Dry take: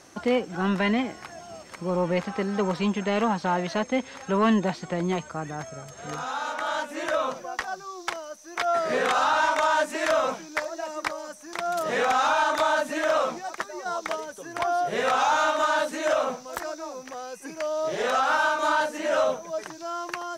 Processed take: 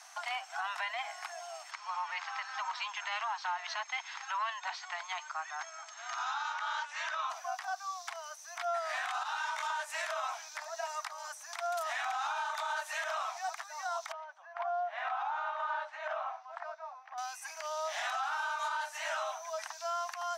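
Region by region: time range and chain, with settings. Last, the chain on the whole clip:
1.71–7.3 LPF 6400 Hz 24 dB/oct + band shelf 560 Hz -8 dB 1.1 oct
9.23–9.7 HPF 1200 Hz 6 dB/oct + detuned doubles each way 18 cents
14.12–17.18 upward compressor, threshold -37 dBFS + tape spacing loss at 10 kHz 42 dB + mismatched tape noise reduction decoder only
whole clip: steep high-pass 670 Hz 96 dB/oct; compressor 4:1, threshold -32 dBFS; limiter -26.5 dBFS

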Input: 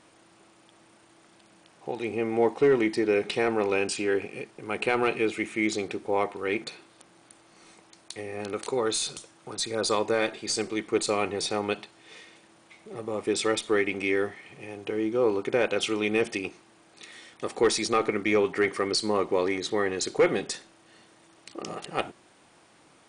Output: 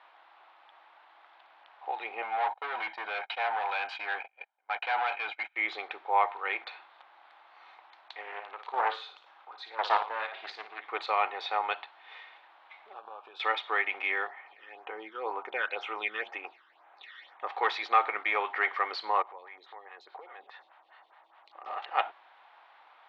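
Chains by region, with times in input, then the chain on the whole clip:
2.22–5.56 gate -35 dBFS, range -31 dB + comb 1.3 ms, depth 62% + overloaded stage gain 28 dB
8.21–10.84 chopper 1.9 Hz, depth 60%, duty 35% + flutter echo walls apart 9.7 m, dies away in 0.37 s + Doppler distortion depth 0.55 ms
12.93–13.4 G.711 law mismatch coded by A + compressor 10:1, threshold -36 dBFS + Butterworth band-stop 2000 Hz, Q 2.8
14.27–17.47 brick-wall FIR high-pass 150 Hz + phaser stages 12, 2 Hz, lowest notch 720–4900 Hz
19.22–21.66 compressor 4:1, threshold -39 dBFS + photocell phaser 4.8 Hz
whole clip: elliptic band-pass 810–3800 Hz, stop band 70 dB; tilt -4.5 dB/oct; gain +6 dB

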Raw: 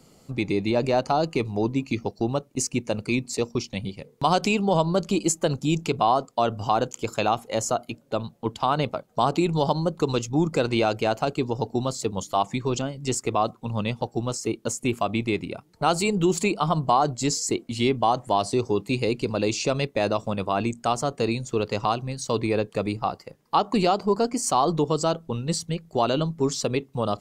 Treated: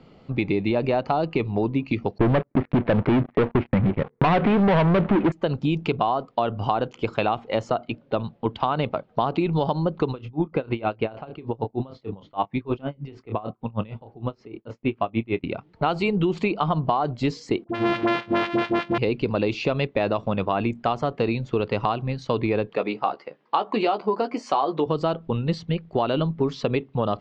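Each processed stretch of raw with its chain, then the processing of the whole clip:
2.18–5.32 steep low-pass 2100 Hz 48 dB/oct + sample leveller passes 5
10.11–15.44 air absorption 230 m + doubler 27 ms -11 dB + dB-linear tremolo 6.5 Hz, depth 24 dB
17.64–18.98 sample sorter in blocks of 128 samples + HPF 170 Hz + dispersion highs, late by 54 ms, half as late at 790 Hz
22.75–24.86 HPF 320 Hz + doubler 14 ms -7 dB
whole clip: LPF 3400 Hz 24 dB/oct; compressor, threshold -23 dBFS; gain +4.5 dB

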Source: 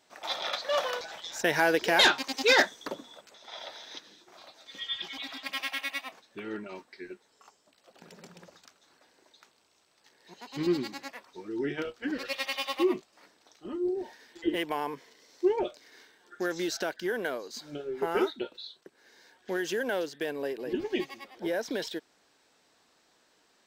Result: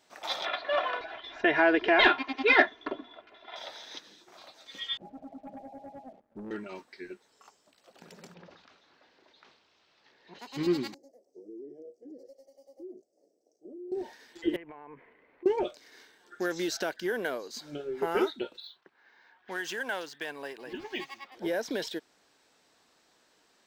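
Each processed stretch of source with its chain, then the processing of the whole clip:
0.45–3.56 LPF 3000 Hz 24 dB/oct + comb 2.9 ms, depth 80%
4.97–6.51 CVSD 64 kbps + rippled Chebyshev low-pass 860 Hz, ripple 9 dB + sample leveller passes 2
8.34–10.39 switching spikes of -49.5 dBFS + Bessel low-pass 2800 Hz, order 6 + sustainer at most 73 dB/s
10.94–13.92 three-band isolator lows -22 dB, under 320 Hz, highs -20 dB, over 4000 Hz + compressor, threshold -41 dBFS + inverse Chebyshev band-stop 960–3800 Hz
14.56–15.46 Chebyshev low-pass 2400 Hz, order 4 + low shelf 75 Hz +11.5 dB + compressor 16:1, threshold -42 dBFS
18.6–21.32 low-pass opened by the level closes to 2200 Hz, open at -31 dBFS + resonant low shelf 670 Hz -7.5 dB, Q 1.5 + decimation joined by straight lines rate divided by 2×
whole clip: dry

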